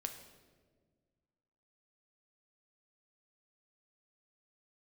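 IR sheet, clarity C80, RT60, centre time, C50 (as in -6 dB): 10.0 dB, 1.6 s, 21 ms, 8.5 dB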